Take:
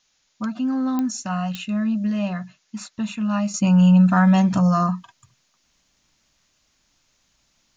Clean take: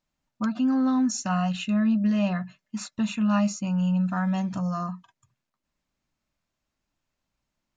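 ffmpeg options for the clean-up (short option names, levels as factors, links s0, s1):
-af "adeclick=t=4,agate=range=0.0891:threshold=0.00112,asetnsamples=n=441:p=0,asendcmd='3.54 volume volume -10.5dB',volume=1"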